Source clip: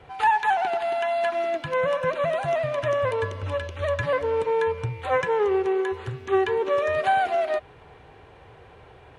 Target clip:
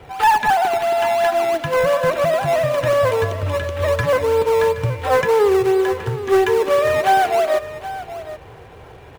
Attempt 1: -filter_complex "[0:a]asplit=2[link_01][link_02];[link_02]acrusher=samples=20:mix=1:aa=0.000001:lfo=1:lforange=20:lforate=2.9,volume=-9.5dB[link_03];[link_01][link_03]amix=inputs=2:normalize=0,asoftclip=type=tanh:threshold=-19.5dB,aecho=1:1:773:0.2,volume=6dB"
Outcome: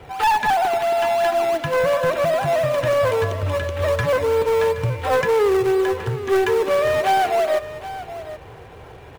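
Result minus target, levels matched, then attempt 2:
soft clipping: distortion +9 dB
-filter_complex "[0:a]asplit=2[link_01][link_02];[link_02]acrusher=samples=20:mix=1:aa=0.000001:lfo=1:lforange=20:lforate=2.9,volume=-9.5dB[link_03];[link_01][link_03]amix=inputs=2:normalize=0,asoftclip=type=tanh:threshold=-12.5dB,aecho=1:1:773:0.2,volume=6dB"

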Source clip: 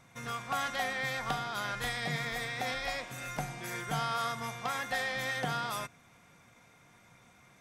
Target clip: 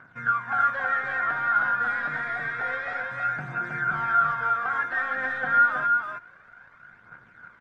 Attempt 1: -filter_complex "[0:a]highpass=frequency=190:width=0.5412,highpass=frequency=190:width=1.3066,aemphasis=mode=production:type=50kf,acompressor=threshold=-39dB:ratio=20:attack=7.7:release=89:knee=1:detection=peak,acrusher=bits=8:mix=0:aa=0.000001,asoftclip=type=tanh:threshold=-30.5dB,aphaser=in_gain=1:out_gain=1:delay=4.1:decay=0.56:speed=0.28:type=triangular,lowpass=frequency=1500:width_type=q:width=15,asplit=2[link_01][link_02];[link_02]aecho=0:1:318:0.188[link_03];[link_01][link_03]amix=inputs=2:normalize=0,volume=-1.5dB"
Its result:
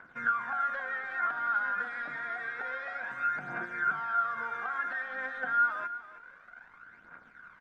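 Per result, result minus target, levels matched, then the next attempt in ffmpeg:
downward compressor: peak gain reduction +13 dB; 125 Hz band −8.0 dB; echo-to-direct −10.5 dB
-filter_complex "[0:a]highpass=frequency=190:width=0.5412,highpass=frequency=190:width=1.3066,aemphasis=mode=production:type=50kf,acrusher=bits=8:mix=0:aa=0.000001,asoftclip=type=tanh:threshold=-30.5dB,aphaser=in_gain=1:out_gain=1:delay=4.1:decay=0.56:speed=0.28:type=triangular,lowpass=frequency=1500:width_type=q:width=15,asplit=2[link_01][link_02];[link_02]aecho=0:1:318:0.188[link_03];[link_01][link_03]amix=inputs=2:normalize=0,volume=-1.5dB"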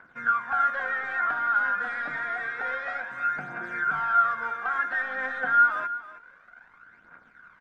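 125 Hz band −9.5 dB; echo-to-direct −10.5 dB
-filter_complex "[0:a]highpass=frequency=77:width=0.5412,highpass=frequency=77:width=1.3066,aemphasis=mode=production:type=50kf,acrusher=bits=8:mix=0:aa=0.000001,asoftclip=type=tanh:threshold=-30.5dB,aphaser=in_gain=1:out_gain=1:delay=4.1:decay=0.56:speed=0.28:type=triangular,lowpass=frequency=1500:width_type=q:width=15,asplit=2[link_01][link_02];[link_02]aecho=0:1:318:0.188[link_03];[link_01][link_03]amix=inputs=2:normalize=0,volume=-1.5dB"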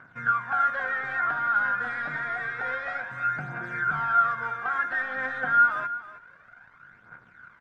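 echo-to-direct −10.5 dB
-filter_complex "[0:a]highpass=frequency=77:width=0.5412,highpass=frequency=77:width=1.3066,aemphasis=mode=production:type=50kf,acrusher=bits=8:mix=0:aa=0.000001,asoftclip=type=tanh:threshold=-30.5dB,aphaser=in_gain=1:out_gain=1:delay=4.1:decay=0.56:speed=0.28:type=triangular,lowpass=frequency=1500:width_type=q:width=15,asplit=2[link_01][link_02];[link_02]aecho=0:1:318:0.631[link_03];[link_01][link_03]amix=inputs=2:normalize=0,volume=-1.5dB"

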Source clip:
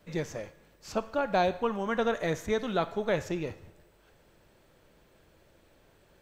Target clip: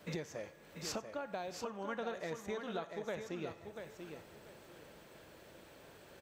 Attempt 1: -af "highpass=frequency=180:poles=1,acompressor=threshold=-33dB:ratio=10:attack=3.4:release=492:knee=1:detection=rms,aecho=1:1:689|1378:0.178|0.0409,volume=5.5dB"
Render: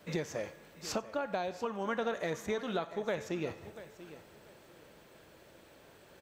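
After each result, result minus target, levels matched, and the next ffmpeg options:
downward compressor: peak gain reduction −7 dB; echo-to-direct −8 dB
-af "highpass=frequency=180:poles=1,acompressor=threshold=-40.5dB:ratio=10:attack=3.4:release=492:knee=1:detection=rms,aecho=1:1:689|1378:0.178|0.0409,volume=5.5dB"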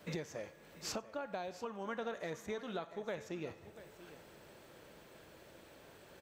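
echo-to-direct −8 dB
-af "highpass=frequency=180:poles=1,acompressor=threshold=-40.5dB:ratio=10:attack=3.4:release=492:knee=1:detection=rms,aecho=1:1:689|1378|2067:0.447|0.103|0.0236,volume=5.5dB"

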